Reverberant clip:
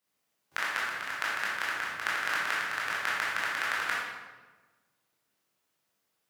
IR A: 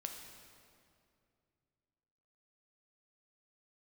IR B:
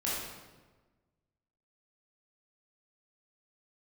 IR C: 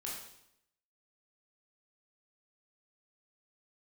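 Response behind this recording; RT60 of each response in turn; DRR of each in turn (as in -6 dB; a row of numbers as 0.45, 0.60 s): B; 2.4, 1.3, 0.75 s; 3.0, -7.5, -4.0 dB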